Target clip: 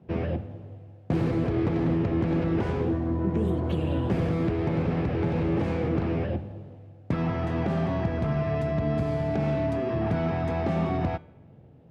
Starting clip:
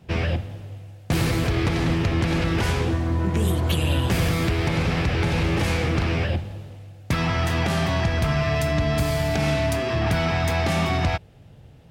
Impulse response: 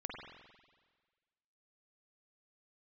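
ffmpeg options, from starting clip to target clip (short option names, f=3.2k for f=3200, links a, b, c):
-filter_complex "[0:a]bandpass=f=310:t=q:w=0.7:csg=0,bandreject=f=298.4:t=h:w=4,bandreject=f=596.8:t=h:w=4,bandreject=f=895.2:t=h:w=4,bandreject=f=1.1936k:t=h:w=4,bandreject=f=1.492k:t=h:w=4,bandreject=f=1.7904k:t=h:w=4,bandreject=f=2.0888k:t=h:w=4,bandreject=f=2.3872k:t=h:w=4,bandreject=f=2.6856k:t=h:w=4,bandreject=f=2.984k:t=h:w=4,bandreject=f=3.2824k:t=h:w=4,bandreject=f=3.5808k:t=h:w=4,bandreject=f=3.8792k:t=h:w=4,bandreject=f=4.1776k:t=h:w=4,bandreject=f=4.476k:t=h:w=4,bandreject=f=4.7744k:t=h:w=4,bandreject=f=5.0728k:t=h:w=4,bandreject=f=5.3712k:t=h:w=4,bandreject=f=5.6696k:t=h:w=4,bandreject=f=5.968k:t=h:w=4,bandreject=f=6.2664k:t=h:w=4,bandreject=f=6.5648k:t=h:w=4,bandreject=f=6.8632k:t=h:w=4,bandreject=f=7.1616k:t=h:w=4,bandreject=f=7.46k:t=h:w=4,bandreject=f=7.7584k:t=h:w=4,bandreject=f=8.0568k:t=h:w=4,bandreject=f=8.3552k:t=h:w=4,bandreject=f=8.6536k:t=h:w=4,bandreject=f=8.952k:t=h:w=4,bandreject=f=9.2504k:t=h:w=4,bandreject=f=9.5488k:t=h:w=4,bandreject=f=9.8472k:t=h:w=4,bandreject=f=10.1456k:t=h:w=4,bandreject=f=10.444k:t=h:w=4,bandreject=f=10.7424k:t=h:w=4,bandreject=f=11.0408k:t=h:w=4,asplit=2[a][b];[1:a]atrim=start_sample=2205[c];[b][c]afir=irnorm=-1:irlink=0,volume=-20.5dB[d];[a][d]amix=inputs=2:normalize=0"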